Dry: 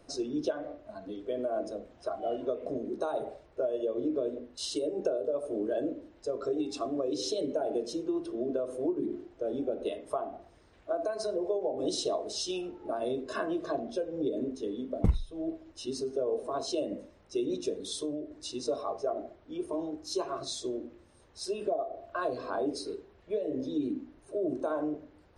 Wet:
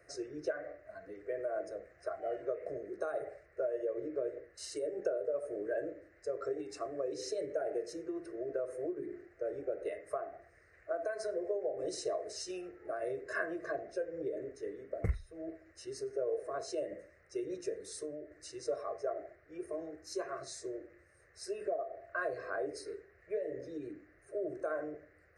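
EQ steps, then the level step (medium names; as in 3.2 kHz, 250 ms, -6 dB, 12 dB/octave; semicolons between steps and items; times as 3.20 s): high-pass 57 Hz; peaking EQ 1.9 kHz +14 dB 0.56 oct; static phaser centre 910 Hz, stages 6; -3.5 dB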